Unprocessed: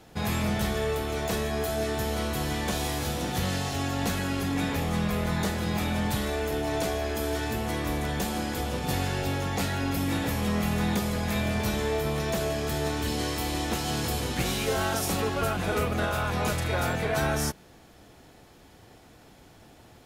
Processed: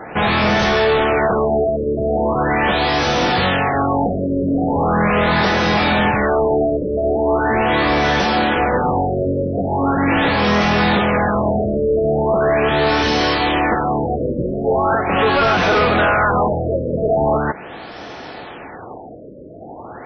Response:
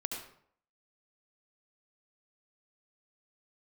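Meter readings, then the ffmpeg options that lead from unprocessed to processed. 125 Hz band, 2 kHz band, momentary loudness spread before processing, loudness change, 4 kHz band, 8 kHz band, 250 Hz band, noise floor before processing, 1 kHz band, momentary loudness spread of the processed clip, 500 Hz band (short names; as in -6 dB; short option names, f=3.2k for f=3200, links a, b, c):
+6.5 dB, +14.0 dB, 3 LU, +12.0 dB, +10.0 dB, n/a, +10.5 dB, -54 dBFS, +15.5 dB, 7 LU, +14.0 dB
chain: -filter_complex "[0:a]asplit=2[a][b];[b]highpass=f=720:p=1,volume=24dB,asoftclip=type=tanh:threshold=-15.5dB[c];[a][c]amix=inputs=2:normalize=0,lowpass=f=2.3k:p=1,volume=-6dB,afftfilt=real='re*lt(b*sr/1024,620*pow(6300/620,0.5+0.5*sin(2*PI*0.4*pts/sr)))':imag='im*lt(b*sr/1024,620*pow(6300/620,0.5+0.5*sin(2*PI*0.4*pts/sr)))':win_size=1024:overlap=0.75,volume=8.5dB"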